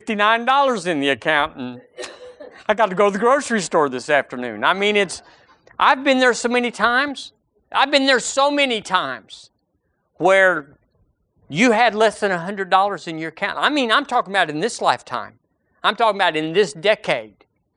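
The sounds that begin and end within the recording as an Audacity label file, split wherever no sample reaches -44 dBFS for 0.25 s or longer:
7.720000	9.470000	sound
10.200000	10.760000	sound
11.500000	15.320000	sound
15.830000	17.420000	sound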